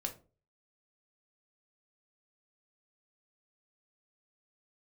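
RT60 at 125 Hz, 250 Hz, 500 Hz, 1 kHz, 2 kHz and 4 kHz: 0.55, 0.45, 0.40, 0.30, 0.25, 0.20 seconds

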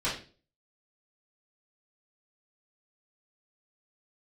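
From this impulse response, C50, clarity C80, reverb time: 6.0 dB, 12.0 dB, 0.40 s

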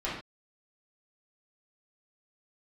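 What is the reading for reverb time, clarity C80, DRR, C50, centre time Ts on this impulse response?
non-exponential decay, 7.0 dB, −8.5 dB, 2.5 dB, 44 ms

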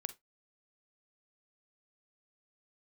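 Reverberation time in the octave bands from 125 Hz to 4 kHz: 0.20, 0.15, 0.15, 0.15, 0.15, 0.15 seconds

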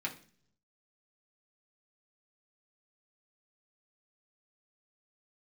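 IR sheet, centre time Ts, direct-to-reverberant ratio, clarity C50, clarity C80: 11 ms, −2.5 dB, 13.0 dB, 18.0 dB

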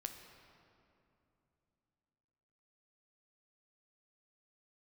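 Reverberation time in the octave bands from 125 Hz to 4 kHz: 3.7, 3.7, 3.0, 2.7, 2.2, 1.6 seconds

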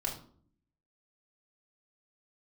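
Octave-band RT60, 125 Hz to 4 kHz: 0.85, 0.85, 0.60, 0.45, 0.35, 0.35 seconds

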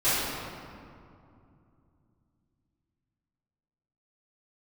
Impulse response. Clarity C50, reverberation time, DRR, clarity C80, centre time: −4.0 dB, 2.5 s, −17.0 dB, −1.0 dB, 153 ms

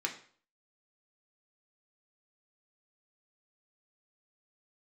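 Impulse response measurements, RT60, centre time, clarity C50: 0.50 s, 14 ms, 10.5 dB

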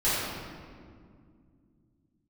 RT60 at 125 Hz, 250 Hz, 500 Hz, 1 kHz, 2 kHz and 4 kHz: 3.7, 3.7, 2.4, 1.9, 1.5, 1.2 seconds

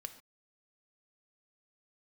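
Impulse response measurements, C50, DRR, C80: 12.0 dB, 8.0 dB, 14.5 dB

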